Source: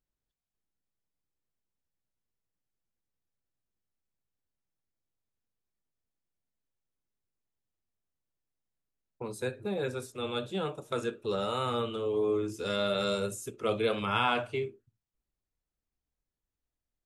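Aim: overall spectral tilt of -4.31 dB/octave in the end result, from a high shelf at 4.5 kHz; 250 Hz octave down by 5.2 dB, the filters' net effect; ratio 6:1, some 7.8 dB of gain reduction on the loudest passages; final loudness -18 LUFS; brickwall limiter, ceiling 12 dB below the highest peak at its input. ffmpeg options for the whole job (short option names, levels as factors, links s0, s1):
-af "equalizer=f=250:t=o:g=-7.5,highshelf=f=4500:g=-3.5,acompressor=threshold=0.0251:ratio=6,volume=17.8,alimiter=limit=0.376:level=0:latency=1"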